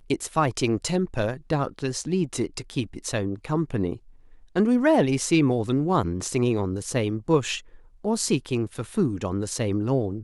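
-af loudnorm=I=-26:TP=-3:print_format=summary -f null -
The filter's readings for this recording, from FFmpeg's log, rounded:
Input Integrated:    -25.5 LUFS
Input True Peak:      -8.2 dBTP
Input LRA:             3.3 LU
Input Threshold:     -35.7 LUFS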